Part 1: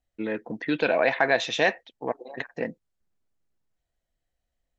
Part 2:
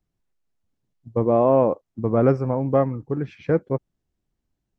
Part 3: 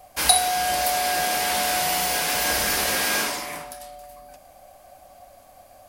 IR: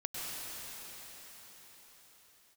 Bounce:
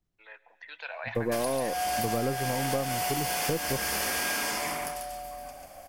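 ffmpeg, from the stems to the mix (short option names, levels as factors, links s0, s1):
-filter_complex "[0:a]highpass=f=780:w=0.5412,highpass=f=780:w=1.3066,volume=0.266,asplit=3[s0][s1][s2];[s1]volume=0.133[s3];[s2]volume=0.075[s4];[1:a]aeval=exprs='if(lt(val(0),0),0.708*val(0),val(0))':c=same,volume=0.841[s5];[2:a]bandreject=f=3900:w=6.7,acompressor=threshold=0.0447:ratio=6,adelay=1150,volume=1,asplit=3[s6][s7][s8];[s7]volume=0.1[s9];[s8]volume=0.668[s10];[3:a]atrim=start_sample=2205[s11];[s3][s9]amix=inputs=2:normalize=0[s12];[s12][s11]afir=irnorm=-1:irlink=0[s13];[s4][s10]amix=inputs=2:normalize=0,aecho=0:1:141:1[s14];[s0][s5][s6][s13][s14]amix=inputs=5:normalize=0,acompressor=threshold=0.0562:ratio=10"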